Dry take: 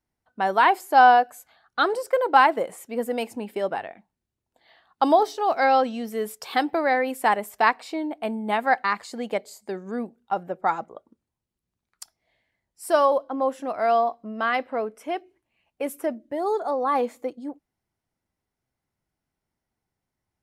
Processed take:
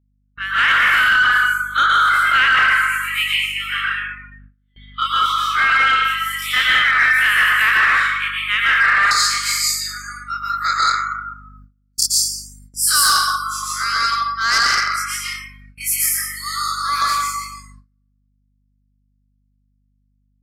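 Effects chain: spectral dilation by 60 ms; steep high-pass 1200 Hz 96 dB/oct; plate-style reverb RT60 1.4 s, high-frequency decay 0.55×, pre-delay 0.105 s, DRR -5.5 dB; limiter -11.5 dBFS, peak gain reduction 9 dB; soft clip -20 dBFS, distortion -12 dB; spectral noise reduction 23 dB; AGC gain up to 10 dB; resonant high shelf 3800 Hz -6.5 dB, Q 3, from 9.11 s +7.5 dB; hum 50 Hz, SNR 24 dB; gate with hold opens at -34 dBFS; gain -1 dB

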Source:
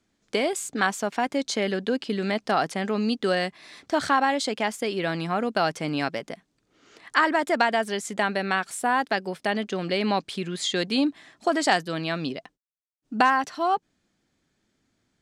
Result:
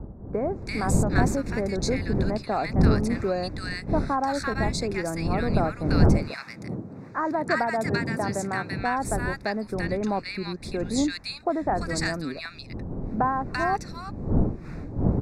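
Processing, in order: wind noise 210 Hz -26 dBFS; 6.31–8.79 HPF 110 Hz 24 dB/oct; soft clip -5 dBFS, distortion -23 dB; Butterworth band-stop 3100 Hz, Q 2.5; bands offset in time lows, highs 0.34 s, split 1300 Hz; gain -1.5 dB

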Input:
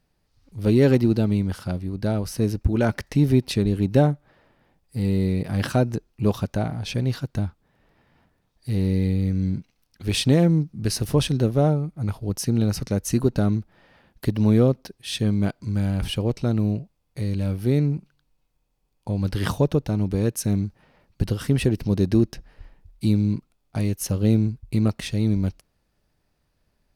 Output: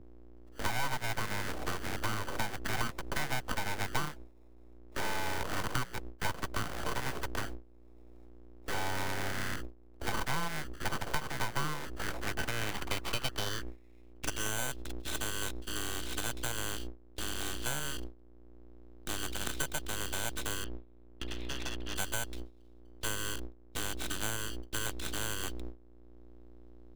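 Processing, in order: sample-and-hold 29×; high-pass sweep 490 Hz -> 3400 Hz, 11.79–14.6; hum 60 Hz, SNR 10 dB; gate with hold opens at -28 dBFS; 20.64–21.96 air absorption 470 m; compressor 5:1, threshold -28 dBFS, peak gain reduction 16 dB; full-wave rectifier; three-band squash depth 40%

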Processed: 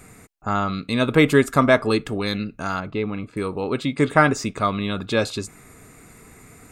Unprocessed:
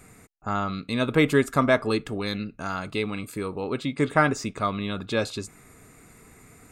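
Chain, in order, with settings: 2.8–3.37 tape spacing loss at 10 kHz 31 dB; gain +4.5 dB

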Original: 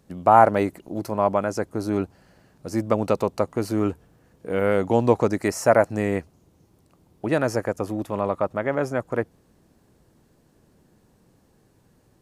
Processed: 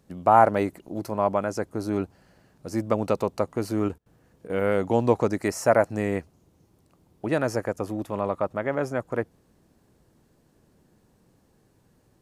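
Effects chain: 3.88–4.48 step gate ".xxxxx.x" 181 bpm -24 dB; gain -2.5 dB

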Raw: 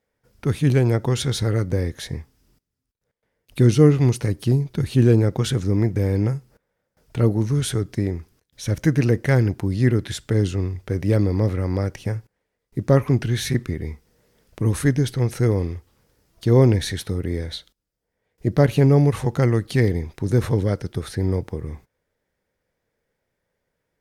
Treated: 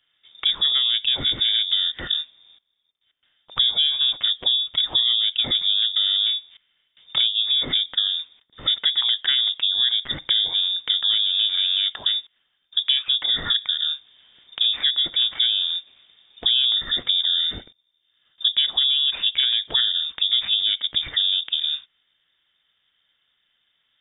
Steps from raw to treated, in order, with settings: 16.64–18.94 low shelf 100 Hz +7.5 dB; inverted band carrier 3600 Hz; compressor 6:1, threshold -26 dBFS, peak gain reduction 17 dB; gain +7.5 dB

